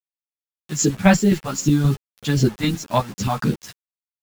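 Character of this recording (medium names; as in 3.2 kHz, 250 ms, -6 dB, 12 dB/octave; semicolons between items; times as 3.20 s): chopped level 3.8 Hz, depth 60%, duty 40%; phasing stages 2, 2.6 Hz, lowest notch 330–1000 Hz; a quantiser's noise floor 8-bit, dither none; a shimmering, thickened sound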